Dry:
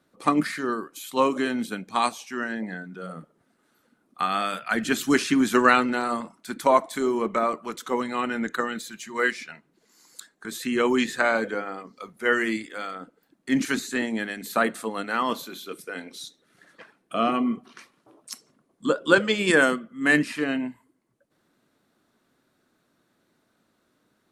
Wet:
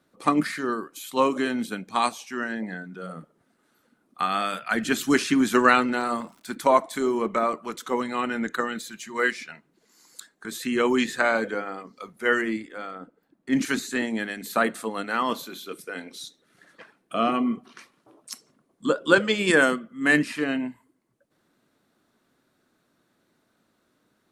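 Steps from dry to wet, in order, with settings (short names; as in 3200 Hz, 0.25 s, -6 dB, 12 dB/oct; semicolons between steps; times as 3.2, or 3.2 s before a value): 5.96–6.54 crackle 190/s -44 dBFS; 12.41–13.53 high shelf 2200 Hz -10.5 dB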